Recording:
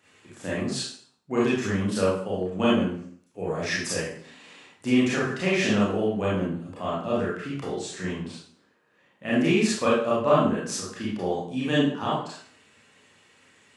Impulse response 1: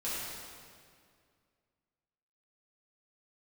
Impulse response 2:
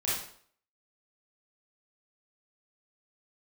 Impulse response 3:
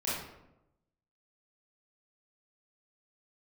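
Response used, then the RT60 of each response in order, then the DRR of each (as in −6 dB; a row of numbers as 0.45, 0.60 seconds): 2; 2.2, 0.55, 0.90 seconds; −10.5, −8.5, −9.5 decibels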